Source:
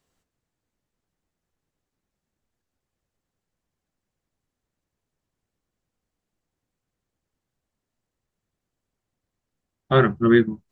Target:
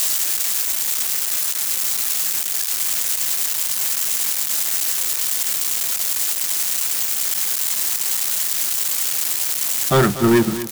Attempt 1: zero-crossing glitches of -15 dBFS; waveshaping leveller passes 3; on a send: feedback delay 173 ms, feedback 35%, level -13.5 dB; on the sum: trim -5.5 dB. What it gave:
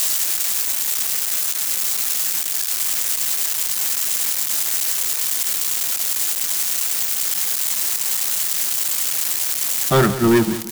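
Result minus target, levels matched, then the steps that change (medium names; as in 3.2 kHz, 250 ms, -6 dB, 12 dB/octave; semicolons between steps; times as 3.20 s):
echo 67 ms early
change: feedback delay 240 ms, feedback 35%, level -13.5 dB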